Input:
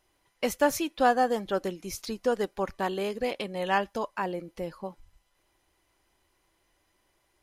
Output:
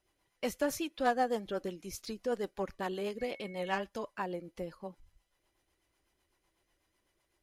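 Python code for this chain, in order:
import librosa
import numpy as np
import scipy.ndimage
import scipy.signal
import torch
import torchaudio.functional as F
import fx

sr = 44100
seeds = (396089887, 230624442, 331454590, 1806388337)

y = fx.cheby_harmonics(x, sr, harmonics=(3, 5), levels_db=(-17, -22), full_scale_db=-10.5)
y = fx.rotary(y, sr, hz=8.0)
y = fx.dmg_tone(y, sr, hz=2200.0, level_db=-48.0, at=(3.18, 3.79), fade=0.02)
y = F.gain(torch.from_numpy(y), -3.5).numpy()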